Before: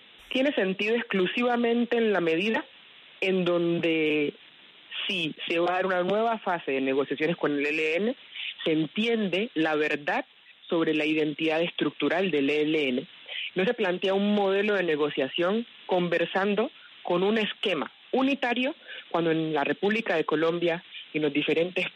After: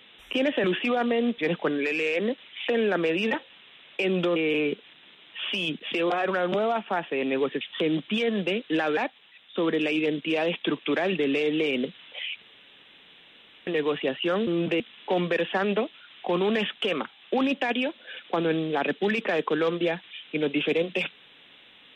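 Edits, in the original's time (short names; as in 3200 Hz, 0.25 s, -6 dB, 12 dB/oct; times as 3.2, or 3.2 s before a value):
0.64–1.17 cut
3.59–3.92 move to 15.61
7.17–8.47 move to 1.91
9.83–10.11 cut
13.56–14.81 room tone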